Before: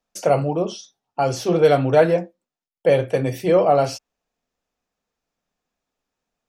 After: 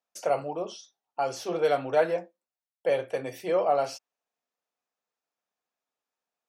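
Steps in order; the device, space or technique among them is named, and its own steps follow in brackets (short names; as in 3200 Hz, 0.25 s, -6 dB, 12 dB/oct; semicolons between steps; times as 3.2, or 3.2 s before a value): filter by subtraction (in parallel: LPF 810 Hz 12 dB/oct + phase invert); on the sum: gain -8.5 dB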